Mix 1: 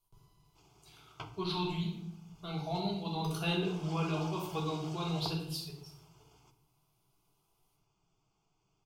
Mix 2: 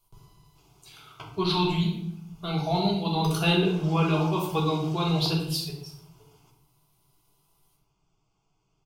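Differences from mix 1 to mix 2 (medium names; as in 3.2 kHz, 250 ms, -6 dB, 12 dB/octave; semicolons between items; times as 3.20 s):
speech +10.0 dB; background: send +8.5 dB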